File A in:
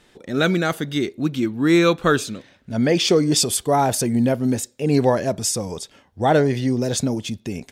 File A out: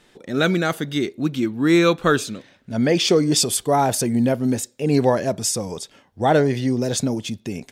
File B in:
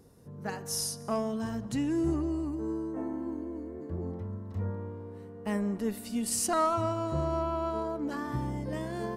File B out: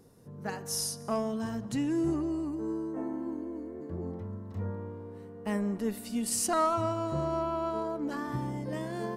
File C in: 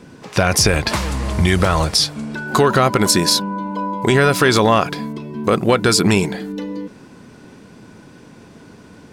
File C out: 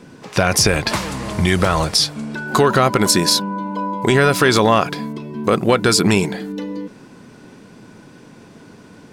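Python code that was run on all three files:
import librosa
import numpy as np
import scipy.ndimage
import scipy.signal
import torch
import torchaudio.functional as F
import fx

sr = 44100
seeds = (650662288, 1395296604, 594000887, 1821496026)

y = fx.peak_eq(x, sr, hz=65.0, db=-14.0, octaves=0.44)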